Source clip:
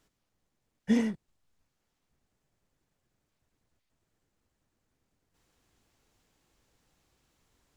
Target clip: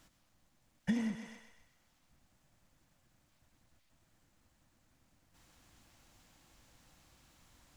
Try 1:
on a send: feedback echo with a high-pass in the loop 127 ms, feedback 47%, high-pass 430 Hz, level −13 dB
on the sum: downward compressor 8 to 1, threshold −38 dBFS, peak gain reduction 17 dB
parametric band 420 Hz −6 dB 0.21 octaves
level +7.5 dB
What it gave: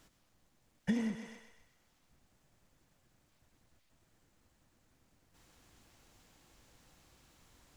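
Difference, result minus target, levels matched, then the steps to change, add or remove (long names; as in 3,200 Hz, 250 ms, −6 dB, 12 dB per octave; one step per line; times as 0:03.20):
500 Hz band +3.5 dB
change: parametric band 420 Hz −17.5 dB 0.21 octaves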